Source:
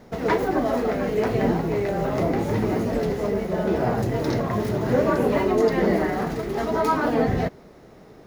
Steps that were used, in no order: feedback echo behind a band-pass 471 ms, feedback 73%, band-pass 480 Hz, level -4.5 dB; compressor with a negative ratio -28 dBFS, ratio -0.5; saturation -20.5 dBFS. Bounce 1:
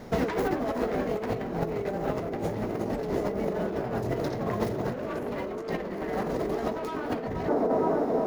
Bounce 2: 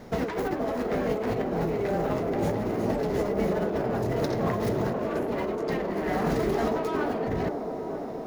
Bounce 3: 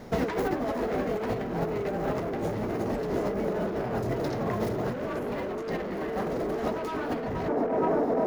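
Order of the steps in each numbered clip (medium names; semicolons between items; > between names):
saturation > feedback echo behind a band-pass > compressor with a negative ratio; saturation > compressor with a negative ratio > feedback echo behind a band-pass; feedback echo behind a band-pass > saturation > compressor with a negative ratio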